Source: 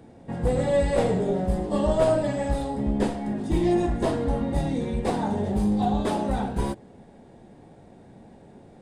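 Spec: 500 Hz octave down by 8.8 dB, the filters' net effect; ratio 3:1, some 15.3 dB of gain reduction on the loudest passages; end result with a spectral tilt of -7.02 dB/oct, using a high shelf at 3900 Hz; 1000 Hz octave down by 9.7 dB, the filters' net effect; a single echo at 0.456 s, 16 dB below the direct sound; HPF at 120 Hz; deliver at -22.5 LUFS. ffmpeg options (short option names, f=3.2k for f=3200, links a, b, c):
-af "highpass=120,equalizer=f=500:t=o:g=-8.5,equalizer=f=1k:t=o:g=-9,highshelf=f=3.9k:g=-9,acompressor=threshold=-45dB:ratio=3,aecho=1:1:456:0.158,volume=22dB"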